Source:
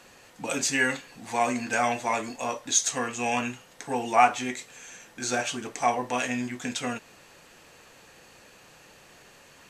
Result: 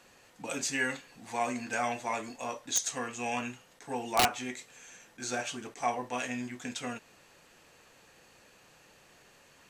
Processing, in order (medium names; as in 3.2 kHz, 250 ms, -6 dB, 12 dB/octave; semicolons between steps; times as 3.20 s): integer overflow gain 9.5 dB; attacks held to a fixed rise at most 500 dB/s; trim -6.5 dB